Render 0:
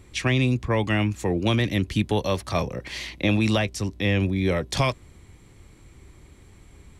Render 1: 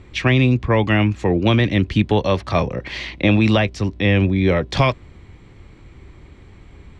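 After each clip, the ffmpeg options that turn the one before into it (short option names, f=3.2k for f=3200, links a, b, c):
-af "lowpass=3.6k,volume=6.5dB"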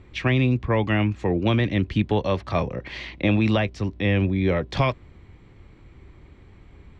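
-af "highshelf=f=5.6k:g=-8.5,volume=-5dB"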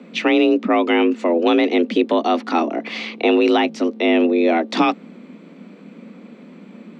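-filter_complex "[0:a]asplit=2[a][b];[b]alimiter=limit=-16.5dB:level=0:latency=1:release=102,volume=2dB[c];[a][c]amix=inputs=2:normalize=0,afreqshift=160"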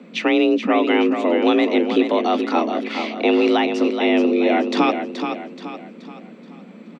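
-af "aecho=1:1:427|854|1281|1708|2135:0.422|0.177|0.0744|0.0312|0.0131,volume=-1.5dB"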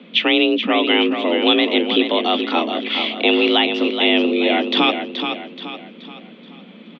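-af "lowpass=f=3.3k:t=q:w=6.7,volume=-1dB"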